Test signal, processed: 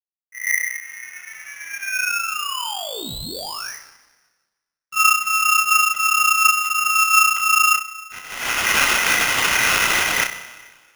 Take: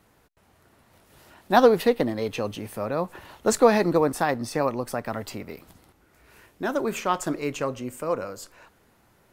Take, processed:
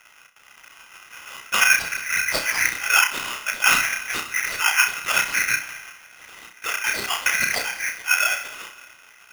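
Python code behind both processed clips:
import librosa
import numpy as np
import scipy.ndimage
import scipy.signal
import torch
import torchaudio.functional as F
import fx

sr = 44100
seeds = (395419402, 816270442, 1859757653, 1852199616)

p1 = fx.env_lowpass(x, sr, base_hz=1100.0, full_db=-20.0)
p2 = fx.auto_swell(p1, sr, attack_ms=532.0)
p3 = fx.low_shelf(p2, sr, hz=96.0, db=2.5)
p4 = fx.over_compress(p3, sr, threshold_db=-33.0, ratio=-0.5)
p5 = fx.lpc_vocoder(p4, sr, seeds[0], excitation='whisper', order=8)
p6 = np.sign(p5) * np.maximum(np.abs(p5) - 10.0 ** (-59.5 / 20.0), 0.0)
p7 = fx.graphic_eq_10(p6, sr, hz=(250, 500, 1000), db=(-8, 10, 4))
p8 = p7 + fx.room_flutter(p7, sr, wall_m=5.5, rt60_s=0.31, dry=0)
p9 = fx.rev_plate(p8, sr, seeds[1], rt60_s=1.6, hf_ratio=0.8, predelay_ms=115, drr_db=16.0)
p10 = p9 * np.sign(np.sin(2.0 * np.pi * 2000.0 * np.arange(len(p9)) / sr))
y = F.gain(torch.from_numpy(p10), 9.0).numpy()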